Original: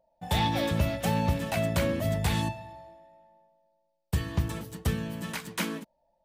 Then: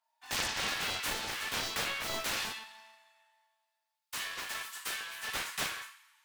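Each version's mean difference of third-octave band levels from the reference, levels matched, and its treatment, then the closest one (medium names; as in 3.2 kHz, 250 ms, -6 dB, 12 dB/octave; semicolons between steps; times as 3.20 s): 12.0 dB: steep high-pass 1 kHz 48 dB/octave; compression 3:1, threshold -37 dBFS, peak gain reduction 7.5 dB; two-slope reverb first 0.46 s, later 2 s, from -25 dB, DRR -8 dB; loudspeaker Doppler distortion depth 0.55 ms; trim -2 dB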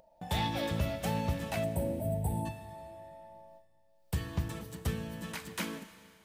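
3.5 dB: gate with hold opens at -58 dBFS; time-frequency box 1.64–2.46 s, 960–7700 Hz -24 dB; upward compressor, threshold -33 dBFS; Schroeder reverb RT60 2.3 s, combs from 26 ms, DRR 11 dB; trim -5.5 dB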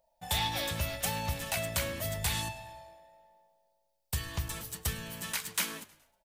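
6.5 dB: treble shelf 4.5 kHz +9.5 dB; in parallel at +0.5 dB: compression, threshold -33 dBFS, peak gain reduction 12 dB; on the sum: peaking EQ 250 Hz -12 dB 2.5 oct; frequency-shifting echo 105 ms, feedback 50%, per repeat -62 Hz, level -20 dB; trim -5 dB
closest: second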